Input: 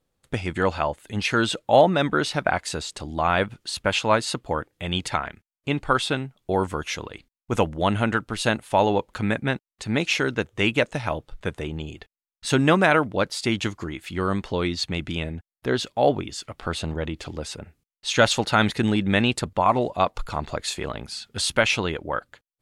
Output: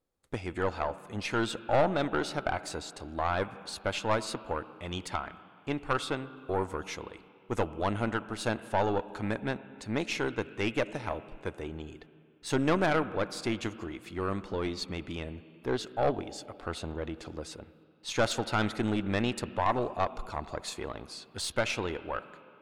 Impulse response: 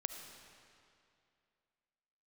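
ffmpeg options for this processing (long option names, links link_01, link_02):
-filter_complex "[0:a]asplit=2[link_01][link_02];[link_02]highpass=frequency=140:width=0.5412,highpass=frequency=140:width=1.3066,equalizer=frequency=320:width_type=q:width=4:gain=3,equalizer=frequency=610:width_type=q:width=4:gain=-4,equalizer=frequency=1900:width_type=q:width=4:gain=-7,lowpass=frequency=2900:width=0.5412,lowpass=frequency=2900:width=1.3066[link_03];[1:a]atrim=start_sample=2205[link_04];[link_03][link_04]afir=irnorm=-1:irlink=0,volume=-5dB[link_05];[link_01][link_05]amix=inputs=2:normalize=0,aeval=exprs='(tanh(3.55*val(0)+0.55)-tanh(0.55))/3.55':channel_layout=same,volume=-7dB"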